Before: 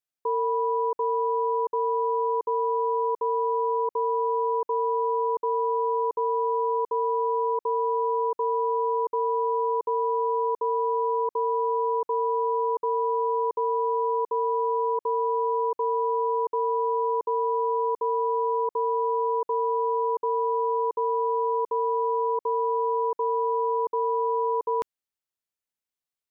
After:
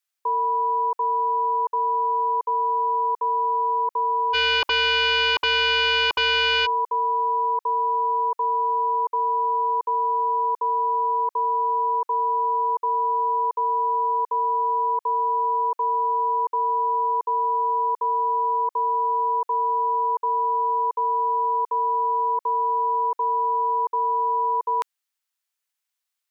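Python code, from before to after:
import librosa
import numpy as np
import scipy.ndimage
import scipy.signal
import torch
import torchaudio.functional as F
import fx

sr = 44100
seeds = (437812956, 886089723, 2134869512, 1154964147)

y = scipy.signal.sosfilt(scipy.signal.butter(2, 1000.0, 'highpass', fs=sr, output='sos'), x)
y = fx.fold_sine(y, sr, drive_db=9, ceiling_db=-25.5, at=(4.33, 6.65), fade=0.02)
y = y * 10.0 ** (8.5 / 20.0)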